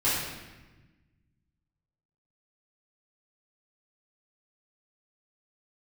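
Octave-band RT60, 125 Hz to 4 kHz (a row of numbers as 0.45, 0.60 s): 2.2, 1.8, 1.3, 1.1, 1.2, 0.95 s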